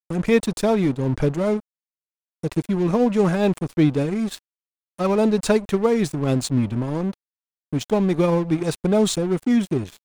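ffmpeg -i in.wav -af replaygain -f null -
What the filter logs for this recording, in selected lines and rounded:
track_gain = +1.6 dB
track_peak = 0.369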